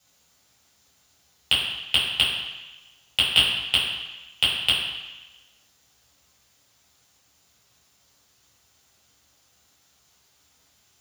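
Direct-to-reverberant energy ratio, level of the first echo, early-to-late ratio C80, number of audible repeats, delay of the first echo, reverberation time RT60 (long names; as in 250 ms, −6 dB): −8.5 dB, no echo audible, 4.0 dB, no echo audible, no echo audible, 1.1 s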